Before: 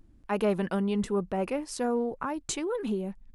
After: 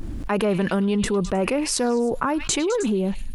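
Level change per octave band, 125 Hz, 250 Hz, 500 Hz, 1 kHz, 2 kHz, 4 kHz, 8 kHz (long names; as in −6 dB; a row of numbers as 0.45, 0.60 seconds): +8.0, +7.5, +6.5, +7.0, +10.0, +12.0, +12.0 decibels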